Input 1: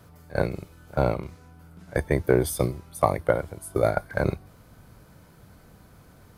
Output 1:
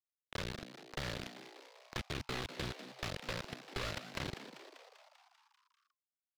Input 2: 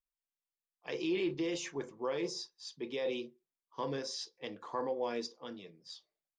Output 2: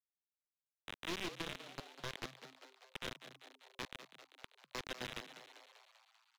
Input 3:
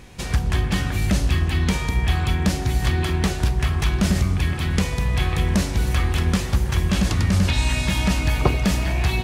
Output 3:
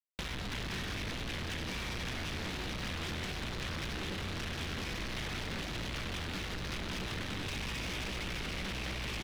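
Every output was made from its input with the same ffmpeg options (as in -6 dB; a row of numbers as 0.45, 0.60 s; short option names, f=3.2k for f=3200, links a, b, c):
-filter_complex "[0:a]alimiter=limit=-12.5dB:level=0:latency=1:release=63,aeval=exprs='(tanh(7.94*val(0)+0.35)-tanh(0.35))/7.94':c=same,aresample=8000,acrusher=bits=4:mix=0:aa=0.000001,aresample=44100,aeval=exprs='0.0562*(abs(mod(val(0)/0.0562+3,4)-2)-1)':c=same,acrossover=split=420|1300[a][b][c];[a]acompressor=threshold=-39dB:ratio=4[d];[b]acompressor=threshold=-51dB:ratio=4[e];[c]acompressor=threshold=-38dB:ratio=4[f];[d][e][f]amix=inputs=3:normalize=0,asplit=2[g][h];[h]asplit=8[i][j][k][l][m][n][o][p];[i]adelay=196,afreqshift=130,volume=-11.5dB[q];[j]adelay=392,afreqshift=260,volume=-15.4dB[r];[k]adelay=588,afreqshift=390,volume=-19.3dB[s];[l]adelay=784,afreqshift=520,volume=-23.1dB[t];[m]adelay=980,afreqshift=650,volume=-27dB[u];[n]adelay=1176,afreqshift=780,volume=-30.9dB[v];[o]adelay=1372,afreqshift=910,volume=-34.8dB[w];[p]adelay=1568,afreqshift=1040,volume=-38.6dB[x];[q][r][s][t][u][v][w][x]amix=inputs=8:normalize=0[y];[g][y]amix=inputs=2:normalize=0,volume=-1.5dB"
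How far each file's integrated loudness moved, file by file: -16.5, -9.0, -16.0 LU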